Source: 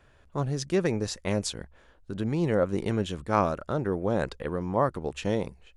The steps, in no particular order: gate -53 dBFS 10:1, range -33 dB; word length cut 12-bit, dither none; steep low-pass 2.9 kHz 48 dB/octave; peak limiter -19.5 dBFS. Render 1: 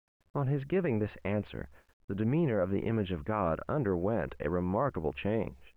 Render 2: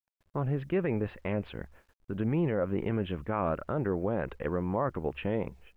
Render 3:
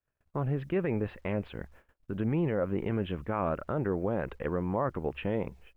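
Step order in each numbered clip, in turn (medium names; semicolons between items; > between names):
peak limiter > steep low-pass > gate > word length cut; steep low-pass > gate > word length cut > peak limiter; peak limiter > steep low-pass > word length cut > gate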